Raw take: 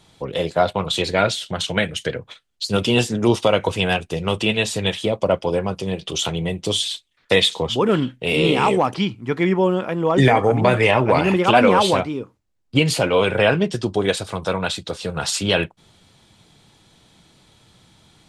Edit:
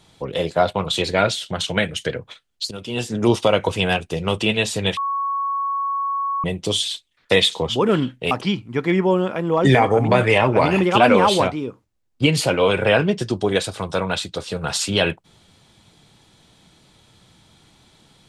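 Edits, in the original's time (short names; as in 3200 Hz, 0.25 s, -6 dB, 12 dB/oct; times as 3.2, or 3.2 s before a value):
2.71–3.21 fade in quadratic, from -15 dB
4.97–6.44 bleep 1110 Hz -20 dBFS
8.31–8.84 cut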